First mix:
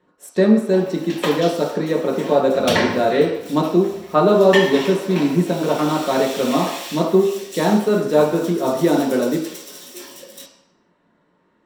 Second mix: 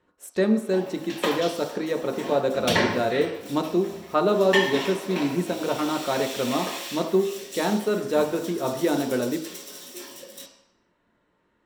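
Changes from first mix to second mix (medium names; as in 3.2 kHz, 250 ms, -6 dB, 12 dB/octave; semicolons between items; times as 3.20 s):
speech: send -9.5 dB; background -3.0 dB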